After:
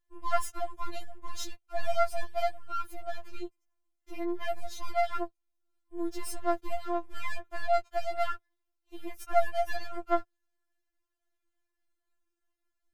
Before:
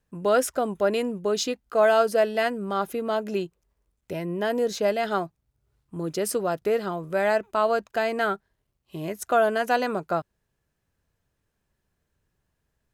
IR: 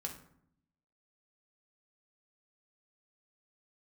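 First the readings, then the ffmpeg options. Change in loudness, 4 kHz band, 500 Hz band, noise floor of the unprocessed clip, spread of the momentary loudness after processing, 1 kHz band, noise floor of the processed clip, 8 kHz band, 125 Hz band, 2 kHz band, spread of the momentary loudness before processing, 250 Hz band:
-8.5 dB, -9.5 dB, -10.5 dB, -78 dBFS, 15 LU, -5.5 dB, -83 dBFS, -10.0 dB, under -10 dB, -10.0 dB, 12 LU, -10.0 dB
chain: -af "aeval=exprs='if(lt(val(0),0),0.251*val(0),val(0))':c=same,afftfilt=real='re*4*eq(mod(b,16),0)':imag='im*4*eq(mod(b,16),0)':win_size=2048:overlap=0.75,volume=-4dB"

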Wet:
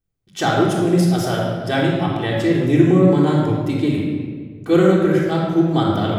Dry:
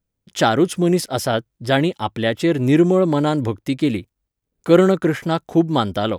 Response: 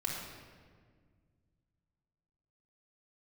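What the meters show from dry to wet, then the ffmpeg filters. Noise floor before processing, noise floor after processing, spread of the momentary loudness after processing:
-79 dBFS, -50 dBFS, 9 LU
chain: -filter_complex "[1:a]atrim=start_sample=2205[a];[0:a][a]afir=irnorm=-1:irlink=0,volume=-4dB"

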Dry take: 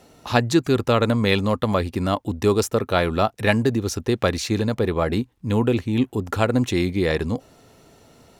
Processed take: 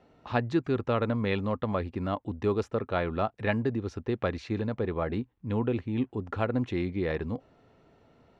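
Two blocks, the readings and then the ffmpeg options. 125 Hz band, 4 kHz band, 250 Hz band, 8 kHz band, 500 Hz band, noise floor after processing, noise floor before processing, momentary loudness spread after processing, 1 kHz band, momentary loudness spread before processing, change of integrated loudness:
-8.5 dB, -16.0 dB, -8.5 dB, under -25 dB, -8.5 dB, -65 dBFS, -56 dBFS, 5 LU, -8.5 dB, 5 LU, -9.0 dB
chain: -af "lowpass=2.5k,volume=-8.5dB"

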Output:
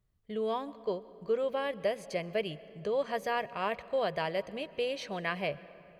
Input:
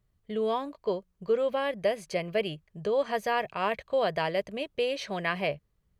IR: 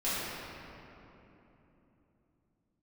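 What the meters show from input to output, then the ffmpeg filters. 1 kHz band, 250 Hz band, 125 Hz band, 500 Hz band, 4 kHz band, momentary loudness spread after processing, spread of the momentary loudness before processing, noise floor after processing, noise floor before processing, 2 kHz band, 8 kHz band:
-4.0 dB, -4.0 dB, -4.0 dB, -4.0 dB, -4.0 dB, 6 LU, 6 LU, -57 dBFS, -73 dBFS, -4.0 dB, n/a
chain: -filter_complex "[0:a]asplit=2[a][b];[1:a]atrim=start_sample=2205,adelay=123[c];[b][c]afir=irnorm=-1:irlink=0,volume=-27.5dB[d];[a][d]amix=inputs=2:normalize=0,volume=-4dB"

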